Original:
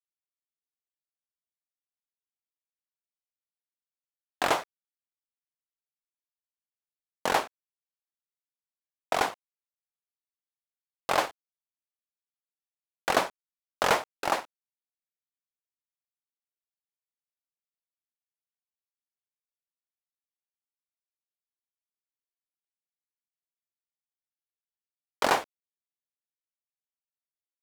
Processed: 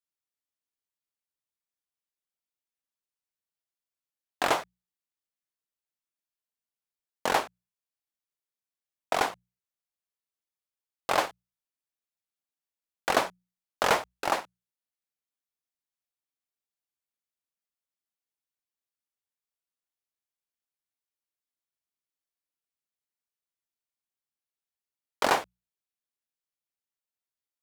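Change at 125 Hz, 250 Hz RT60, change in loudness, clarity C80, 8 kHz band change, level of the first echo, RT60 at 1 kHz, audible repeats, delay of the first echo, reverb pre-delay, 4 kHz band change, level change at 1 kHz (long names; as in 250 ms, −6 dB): −0.5 dB, no reverb audible, 0.0 dB, no reverb audible, 0.0 dB, no echo audible, no reverb audible, no echo audible, no echo audible, no reverb audible, 0.0 dB, 0.0 dB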